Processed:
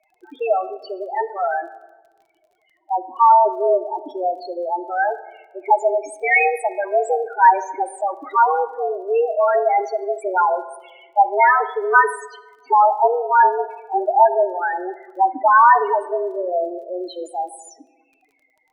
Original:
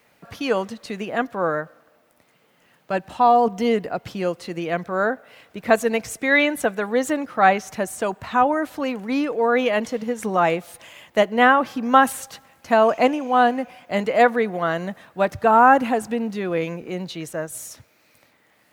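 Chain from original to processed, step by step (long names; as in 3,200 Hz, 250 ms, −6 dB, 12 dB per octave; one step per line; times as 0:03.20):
low-shelf EQ 420 Hz −2.5 dB
spectral peaks only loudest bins 4
frequency shifter +180 Hz
surface crackle 26 per second −52 dBFS
on a send: convolution reverb RT60 1.3 s, pre-delay 6 ms, DRR 12 dB
on the sum: level +5 dB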